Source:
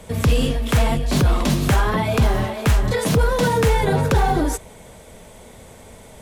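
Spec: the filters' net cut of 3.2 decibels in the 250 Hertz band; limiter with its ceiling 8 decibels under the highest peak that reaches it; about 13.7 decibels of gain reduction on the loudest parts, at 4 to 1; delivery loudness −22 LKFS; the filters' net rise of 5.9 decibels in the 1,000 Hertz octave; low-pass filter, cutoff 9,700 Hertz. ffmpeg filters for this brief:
ffmpeg -i in.wav -af "lowpass=9700,equalizer=frequency=250:width_type=o:gain=-5,equalizer=frequency=1000:width_type=o:gain=7.5,acompressor=threshold=-29dB:ratio=4,volume=11.5dB,alimiter=limit=-11.5dB:level=0:latency=1" out.wav

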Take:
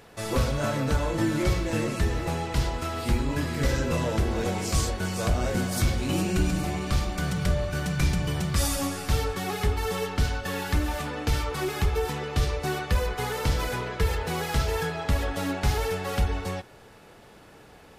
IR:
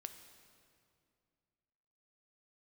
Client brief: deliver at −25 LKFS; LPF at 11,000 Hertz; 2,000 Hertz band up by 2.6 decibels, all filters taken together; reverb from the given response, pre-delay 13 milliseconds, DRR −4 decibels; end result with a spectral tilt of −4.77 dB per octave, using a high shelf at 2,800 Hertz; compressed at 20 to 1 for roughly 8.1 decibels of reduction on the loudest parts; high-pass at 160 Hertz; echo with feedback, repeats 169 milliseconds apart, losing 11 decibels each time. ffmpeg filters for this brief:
-filter_complex "[0:a]highpass=160,lowpass=11000,equalizer=frequency=2000:width_type=o:gain=5.5,highshelf=frequency=2800:gain=-5.5,acompressor=threshold=-31dB:ratio=20,aecho=1:1:169|338|507:0.282|0.0789|0.0221,asplit=2[link_01][link_02];[1:a]atrim=start_sample=2205,adelay=13[link_03];[link_02][link_03]afir=irnorm=-1:irlink=0,volume=8.5dB[link_04];[link_01][link_04]amix=inputs=2:normalize=0,volume=4.5dB"

